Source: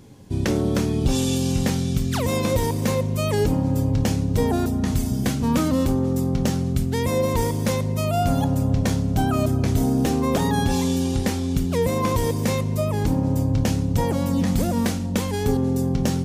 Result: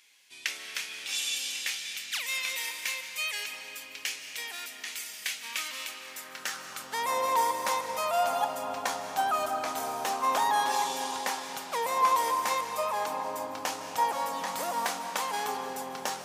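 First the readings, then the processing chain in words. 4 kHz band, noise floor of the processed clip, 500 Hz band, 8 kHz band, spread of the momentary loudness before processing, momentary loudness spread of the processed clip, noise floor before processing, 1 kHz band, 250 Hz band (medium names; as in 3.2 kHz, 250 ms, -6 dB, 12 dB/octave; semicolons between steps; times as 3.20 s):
-0.5 dB, -46 dBFS, -11.0 dB, -2.5 dB, 3 LU, 10 LU, -25 dBFS, +2.0 dB, -26.5 dB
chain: algorithmic reverb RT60 4.1 s, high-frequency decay 0.65×, pre-delay 115 ms, DRR 5.5 dB; high-pass sweep 2.3 kHz -> 940 Hz, 5.98–7.12 s; trim -3.5 dB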